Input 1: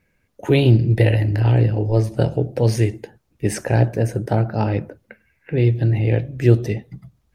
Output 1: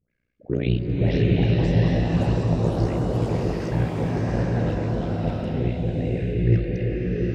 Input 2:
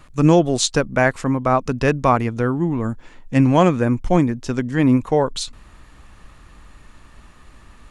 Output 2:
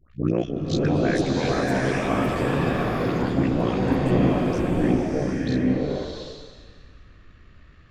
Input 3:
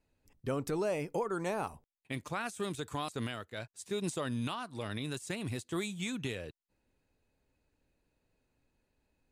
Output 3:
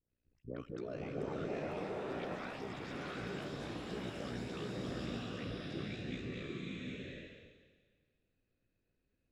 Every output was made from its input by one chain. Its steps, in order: Bessel low-pass 3600 Hz, order 8; bell 860 Hz -14.5 dB 0.48 oct; notch 1000 Hz, Q 22; dispersion highs, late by 0.11 s, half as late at 1200 Hz; AM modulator 60 Hz, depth 100%; echoes that change speed 0.663 s, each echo +6 st, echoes 3, each echo -6 dB; bloom reverb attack 0.77 s, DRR -4 dB; gain -5 dB

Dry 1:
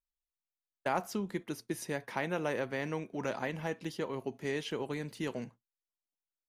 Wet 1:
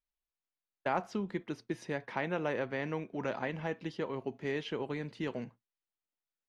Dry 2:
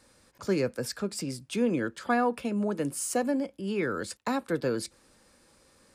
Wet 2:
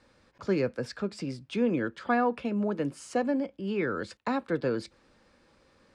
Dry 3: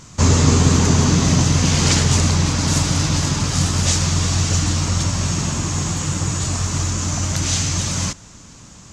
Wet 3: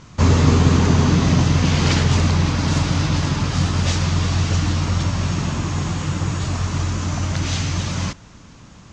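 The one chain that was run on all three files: LPF 3800 Hz 12 dB/oct

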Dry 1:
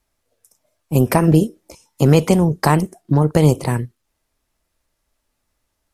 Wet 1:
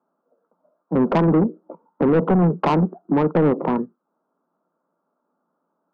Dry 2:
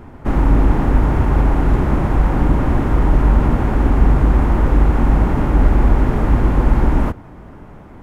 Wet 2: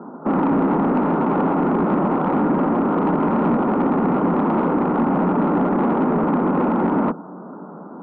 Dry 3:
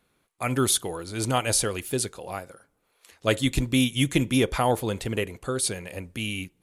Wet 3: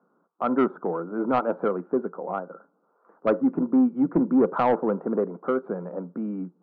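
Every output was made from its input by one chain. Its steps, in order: Chebyshev band-pass 170–1400 Hz, order 5; in parallel at 0 dB: limiter -14 dBFS; on the sum: soft clip -12 dBFS

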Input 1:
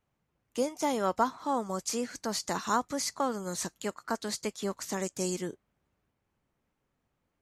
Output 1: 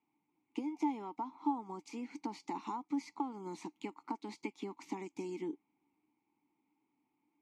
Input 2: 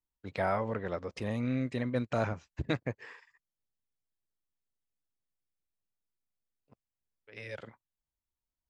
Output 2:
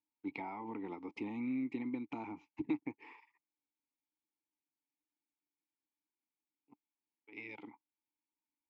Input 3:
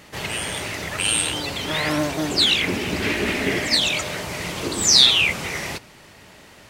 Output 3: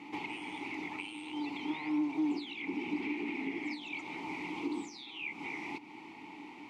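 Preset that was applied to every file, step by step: HPF 170 Hz 6 dB/oct; compressor 12:1, threshold -35 dBFS; vowel filter u; gain +12 dB

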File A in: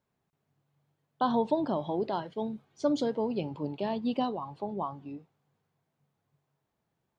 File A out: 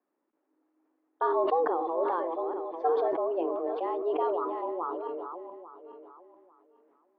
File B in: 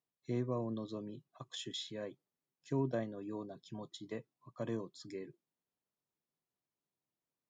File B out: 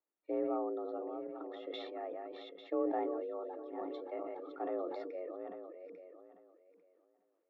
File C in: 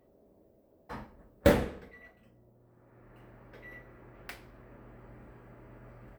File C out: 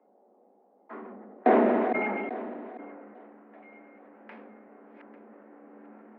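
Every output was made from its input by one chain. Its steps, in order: regenerating reverse delay 0.423 s, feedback 41%, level -8 dB; Bessel low-pass 1400 Hz, order 4; frequency shift +170 Hz; sustainer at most 23 dB/s

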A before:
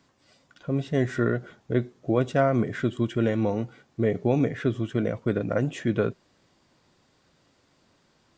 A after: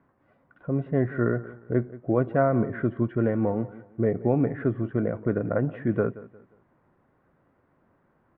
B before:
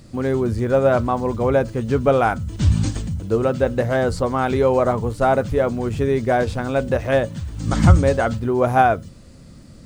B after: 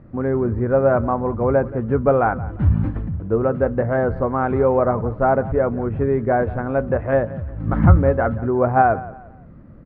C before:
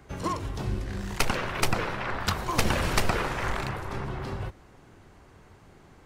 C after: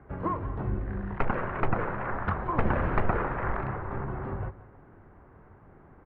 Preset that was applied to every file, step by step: LPF 1700 Hz 24 dB/oct; feedback echo 0.177 s, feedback 33%, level -18 dB

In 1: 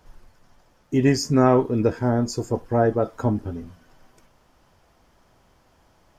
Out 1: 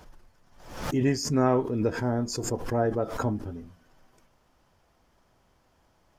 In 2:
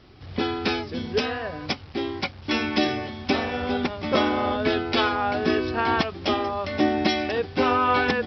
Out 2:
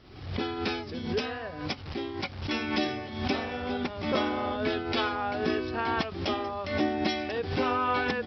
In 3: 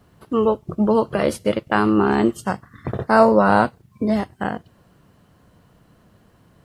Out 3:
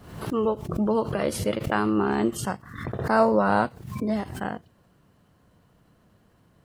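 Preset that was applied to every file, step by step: backwards sustainer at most 73 dB/s; gain -6.5 dB

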